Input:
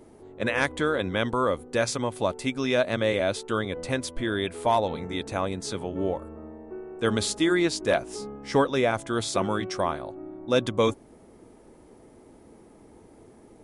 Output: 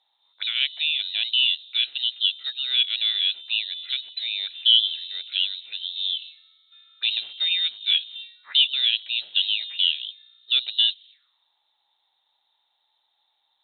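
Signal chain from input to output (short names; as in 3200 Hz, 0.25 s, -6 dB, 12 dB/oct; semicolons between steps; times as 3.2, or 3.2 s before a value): inverted band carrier 4000 Hz; auto-wah 730–3000 Hz, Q 7.1, up, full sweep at -29 dBFS; gain +8.5 dB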